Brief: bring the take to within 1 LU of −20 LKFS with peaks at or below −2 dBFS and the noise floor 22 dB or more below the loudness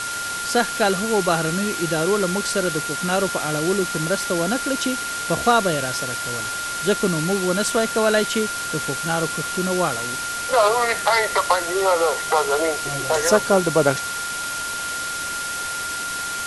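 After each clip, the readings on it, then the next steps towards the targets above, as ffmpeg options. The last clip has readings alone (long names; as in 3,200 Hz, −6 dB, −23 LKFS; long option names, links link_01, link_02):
interfering tone 1,400 Hz; level of the tone −27 dBFS; background noise floor −28 dBFS; target noise floor −43 dBFS; integrated loudness −21.0 LKFS; sample peak −3.0 dBFS; target loudness −20.0 LKFS
→ -af "bandreject=frequency=1400:width=30"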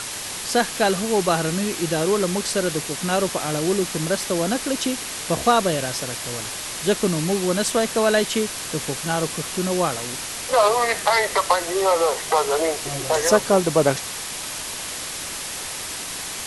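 interfering tone none found; background noise floor −31 dBFS; target noise floor −44 dBFS
→ -af "afftdn=noise_reduction=13:noise_floor=-31"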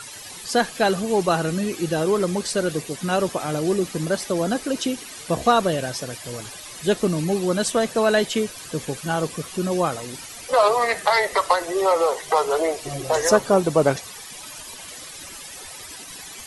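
background noise floor −39 dBFS; target noise floor −44 dBFS
→ -af "afftdn=noise_reduction=6:noise_floor=-39"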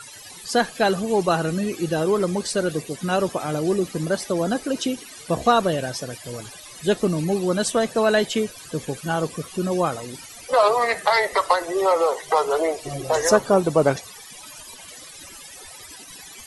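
background noise floor −42 dBFS; target noise floor −45 dBFS
→ -af "afftdn=noise_reduction=6:noise_floor=-42"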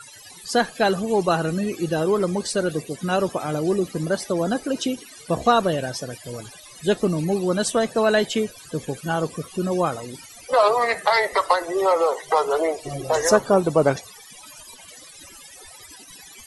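background noise floor −45 dBFS; integrated loudness −22.5 LKFS; sample peak −3.0 dBFS; target loudness −20.0 LKFS
→ -af "volume=2.5dB,alimiter=limit=-2dB:level=0:latency=1"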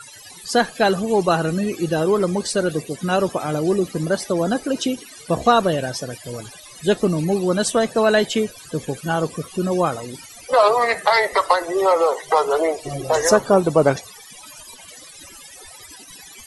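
integrated loudness −20.0 LKFS; sample peak −2.0 dBFS; background noise floor −42 dBFS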